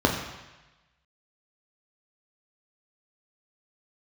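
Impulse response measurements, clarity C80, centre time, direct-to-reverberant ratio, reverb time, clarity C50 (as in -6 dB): 7.5 dB, 35 ms, 0.5 dB, 1.1 s, 6.0 dB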